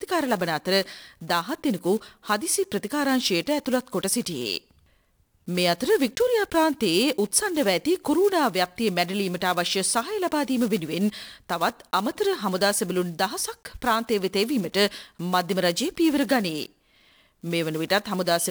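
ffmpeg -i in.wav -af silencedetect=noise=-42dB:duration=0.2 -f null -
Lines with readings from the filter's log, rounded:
silence_start: 4.58
silence_end: 5.48 | silence_duration: 0.90
silence_start: 16.66
silence_end: 17.44 | silence_duration: 0.77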